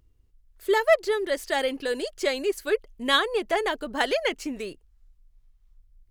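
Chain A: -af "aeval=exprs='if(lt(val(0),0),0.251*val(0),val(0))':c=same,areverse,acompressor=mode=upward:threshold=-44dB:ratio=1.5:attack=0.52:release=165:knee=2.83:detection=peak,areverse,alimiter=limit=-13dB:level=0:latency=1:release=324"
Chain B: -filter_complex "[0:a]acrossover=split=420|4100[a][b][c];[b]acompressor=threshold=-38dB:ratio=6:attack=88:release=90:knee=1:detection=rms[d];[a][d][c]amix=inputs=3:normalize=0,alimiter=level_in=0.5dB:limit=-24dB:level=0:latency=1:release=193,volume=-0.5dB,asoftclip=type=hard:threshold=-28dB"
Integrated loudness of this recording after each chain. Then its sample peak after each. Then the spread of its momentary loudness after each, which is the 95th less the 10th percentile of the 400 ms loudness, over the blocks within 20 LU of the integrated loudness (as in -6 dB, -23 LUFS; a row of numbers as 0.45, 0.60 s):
-30.5, -35.5 LUFS; -13.0, -28.0 dBFS; 8, 4 LU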